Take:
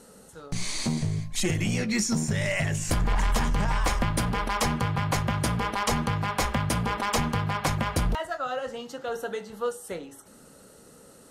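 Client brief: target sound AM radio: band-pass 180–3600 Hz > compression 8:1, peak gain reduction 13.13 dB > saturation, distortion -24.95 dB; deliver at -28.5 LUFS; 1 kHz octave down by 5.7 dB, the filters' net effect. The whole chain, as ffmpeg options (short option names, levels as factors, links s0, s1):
-af "highpass=180,lowpass=3600,equalizer=f=1000:t=o:g=-7,acompressor=threshold=0.0141:ratio=8,asoftclip=threshold=0.0398,volume=4.47"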